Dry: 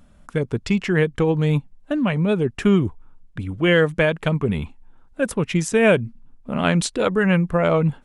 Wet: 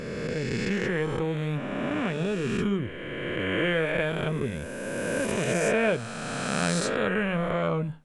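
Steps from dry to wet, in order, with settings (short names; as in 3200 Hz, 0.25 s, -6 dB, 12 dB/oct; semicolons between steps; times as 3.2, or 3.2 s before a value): spectral swells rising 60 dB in 2.88 s; flange 0.67 Hz, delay 7.3 ms, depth 3.2 ms, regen -78%; gain -7 dB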